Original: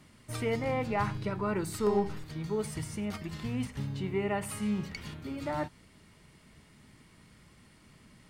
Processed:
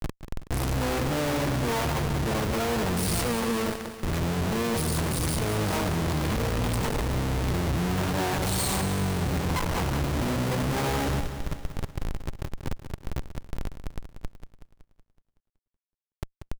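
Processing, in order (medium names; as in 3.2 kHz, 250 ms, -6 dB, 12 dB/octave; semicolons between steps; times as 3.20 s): Doppler pass-by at 3.00 s, 37 m/s, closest 30 m; time stretch by phase-locked vocoder 2×; comb 6.5 ms, depth 77%; de-hum 327.2 Hz, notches 3; harmony voices -12 st 0 dB, -5 st -9 dB; high-order bell 3.1 kHz -9.5 dB 2.8 oct; Schmitt trigger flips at -57.5 dBFS; bit-crushed delay 187 ms, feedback 55%, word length 14-bit, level -10 dB; trim +8 dB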